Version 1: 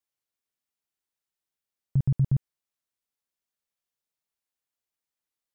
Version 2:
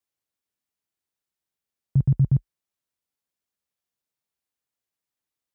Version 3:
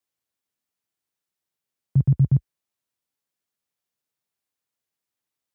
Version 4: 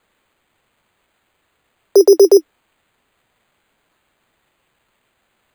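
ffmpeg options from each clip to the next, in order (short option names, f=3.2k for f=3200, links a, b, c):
-af "highpass=f=41:w=0.5412,highpass=f=41:w=1.3066,lowshelf=f=470:g=4.5"
-af "highpass=f=72:w=0.5412,highpass=f=72:w=1.3066,volume=1.5dB"
-af "afreqshift=260,acrusher=samples=8:mix=1:aa=0.000001,alimiter=level_in=21.5dB:limit=-1dB:release=50:level=0:latency=1,volume=-1dB"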